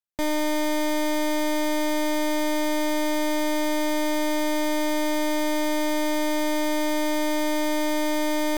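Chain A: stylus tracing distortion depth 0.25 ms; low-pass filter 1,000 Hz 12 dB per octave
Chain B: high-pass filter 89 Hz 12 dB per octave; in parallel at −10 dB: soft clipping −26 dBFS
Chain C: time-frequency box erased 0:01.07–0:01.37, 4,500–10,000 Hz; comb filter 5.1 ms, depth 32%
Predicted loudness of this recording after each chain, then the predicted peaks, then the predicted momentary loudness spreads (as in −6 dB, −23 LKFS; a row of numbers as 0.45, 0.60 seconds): −26.5, −23.5, −25.0 LKFS; −22.5, −16.0, −19.5 dBFS; 0, 0, 0 LU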